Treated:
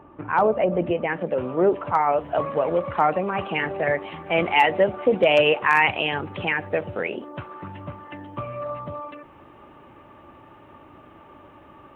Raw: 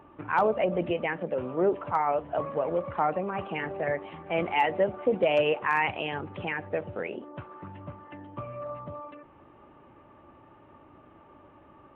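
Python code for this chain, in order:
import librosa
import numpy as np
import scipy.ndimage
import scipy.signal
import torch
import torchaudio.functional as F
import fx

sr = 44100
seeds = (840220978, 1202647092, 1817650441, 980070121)

y = fx.high_shelf(x, sr, hz=2300.0, db=fx.steps((0.0, -8.5), (1.09, 2.0), (2.19, 8.0)))
y = y * librosa.db_to_amplitude(5.5)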